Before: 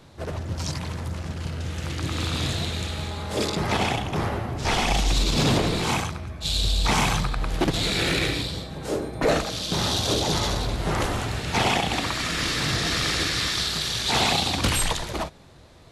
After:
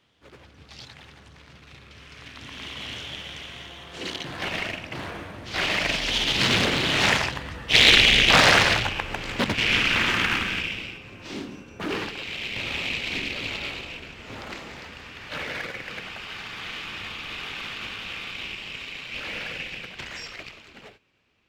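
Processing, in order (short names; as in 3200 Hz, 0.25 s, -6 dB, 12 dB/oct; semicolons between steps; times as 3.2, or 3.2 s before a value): Doppler pass-by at 5.89, 41 m/s, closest 26 m; weighting filter D; in parallel at -11.5 dB: sample-rate reducer 3400 Hz, jitter 0%; on the sum: speed mistake 45 rpm record played at 33 rpm; Doppler distortion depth 0.74 ms; gain +1.5 dB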